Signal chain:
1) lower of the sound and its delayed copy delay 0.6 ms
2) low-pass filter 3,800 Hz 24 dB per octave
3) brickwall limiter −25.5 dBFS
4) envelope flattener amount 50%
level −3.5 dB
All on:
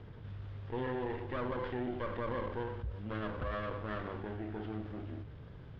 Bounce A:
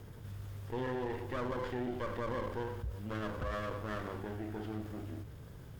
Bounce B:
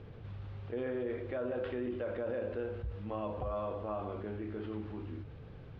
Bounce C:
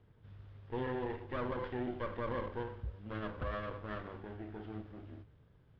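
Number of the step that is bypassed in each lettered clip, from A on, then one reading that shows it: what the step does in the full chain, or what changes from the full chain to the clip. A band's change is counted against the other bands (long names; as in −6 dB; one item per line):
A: 2, 4 kHz band +1.5 dB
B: 1, 500 Hz band +5.0 dB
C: 4, change in momentary loudness spread +6 LU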